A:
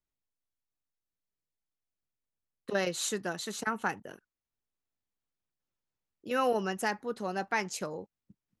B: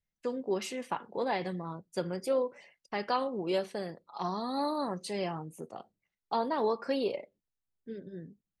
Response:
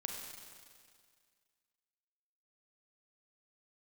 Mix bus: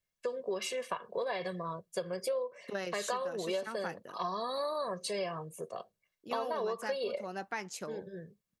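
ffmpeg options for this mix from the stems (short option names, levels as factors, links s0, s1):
-filter_complex "[0:a]volume=0.562[s0];[1:a]lowshelf=f=260:g=-5.5,aecho=1:1:1.8:0.84,volume=1.26[s1];[s0][s1]amix=inputs=2:normalize=0,lowshelf=f=83:g=-7.5,acompressor=threshold=0.0251:ratio=5"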